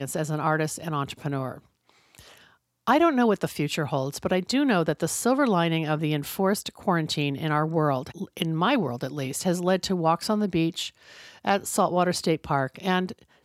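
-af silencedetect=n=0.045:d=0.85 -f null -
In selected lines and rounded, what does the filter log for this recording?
silence_start: 1.52
silence_end: 2.87 | silence_duration: 1.36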